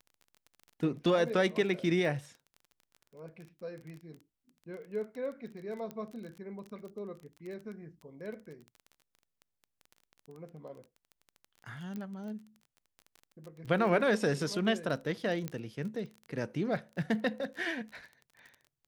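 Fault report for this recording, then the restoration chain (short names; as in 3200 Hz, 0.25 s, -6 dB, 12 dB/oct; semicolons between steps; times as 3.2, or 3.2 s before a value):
crackle 22/s -41 dBFS
5.91 pop -27 dBFS
11.96 pop -28 dBFS
15.48 pop -21 dBFS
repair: de-click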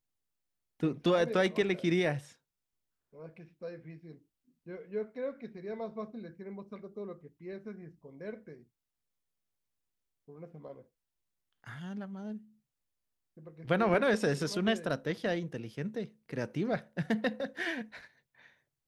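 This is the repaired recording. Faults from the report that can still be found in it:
5.91 pop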